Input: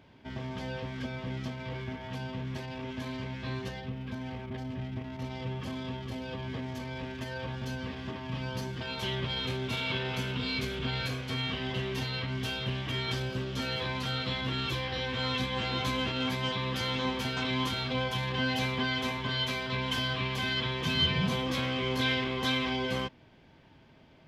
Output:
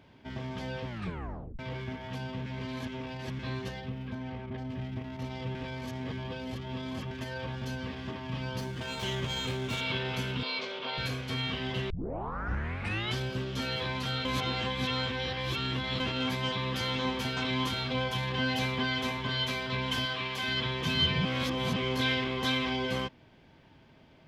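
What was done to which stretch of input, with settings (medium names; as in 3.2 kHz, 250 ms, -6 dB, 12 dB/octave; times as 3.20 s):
0.87 s: tape stop 0.72 s
2.46–3.39 s: reverse
4.07–4.70 s: treble shelf 4.8 kHz -11 dB
5.55–7.11 s: reverse
8.60–9.81 s: sliding maximum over 3 samples
10.43–10.98 s: cabinet simulation 460–5400 Hz, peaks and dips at 560 Hz +9 dB, 990 Hz +7 dB, 1.7 kHz -4 dB
11.90 s: tape start 1.26 s
14.25–16.00 s: reverse
20.05–20.48 s: bass shelf 230 Hz -11.5 dB
21.25–21.76 s: reverse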